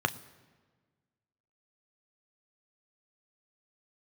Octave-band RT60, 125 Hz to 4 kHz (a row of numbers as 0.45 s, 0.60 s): 1.7 s, 1.8 s, 1.5 s, 1.4 s, 1.3 s, 1.1 s